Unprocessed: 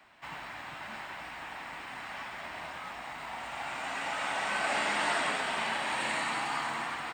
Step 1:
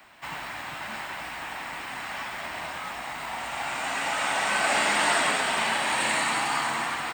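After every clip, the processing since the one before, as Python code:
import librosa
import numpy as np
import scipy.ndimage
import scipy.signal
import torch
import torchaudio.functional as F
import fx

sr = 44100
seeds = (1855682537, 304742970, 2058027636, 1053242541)

y = fx.high_shelf(x, sr, hz=7900.0, db=11.0)
y = F.gain(torch.from_numpy(y), 6.0).numpy()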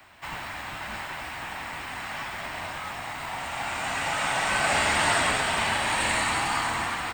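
y = fx.octave_divider(x, sr, octaves=2, level_db=1.0)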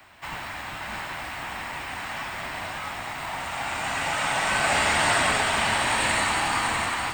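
y = x + 10.0 ** (-7.5 / 20.0) * np.pad(x, (int(649 * sr / 1000.0), 0))[:len(x)]
y = F.gain(torch.from_numpy(y), 1.0).numpy()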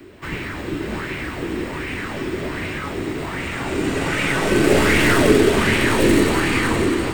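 y = fx.tracing_dist(x, sr, depth_ms=0.057)
y = fx.low_shelf_res(y, sr, hz=550.0, db=11.5, q=3.0)
y = fx.bell_lfo(y, sr, hz=1.3, low_hz=310.0, high_hz=2400.0, db=9)
y = F.gain(torch.from_numpy(y), 1.0).numpy()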